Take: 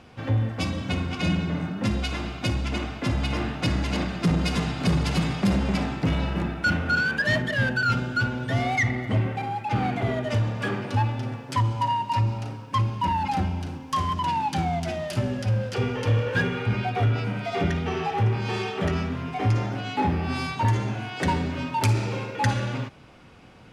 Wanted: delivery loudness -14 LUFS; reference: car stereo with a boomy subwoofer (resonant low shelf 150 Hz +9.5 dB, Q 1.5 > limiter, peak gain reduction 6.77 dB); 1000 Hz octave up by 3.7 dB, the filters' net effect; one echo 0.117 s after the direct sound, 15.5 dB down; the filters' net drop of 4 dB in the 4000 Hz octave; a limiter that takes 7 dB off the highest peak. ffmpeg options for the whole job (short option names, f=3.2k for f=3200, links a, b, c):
-af "equalizer=f=1k:t=o:g=5,equalizer=f=4k:t=o:g=-6,alimiter=limit=-17dB:level=0:latency=1,lowshelf=f=150:t=q:w=1.5:g=9.5,aecho=1:1:117:0.168,volume=8.5dB,alimiter=limit=-4.5dB:level=0:latency=1"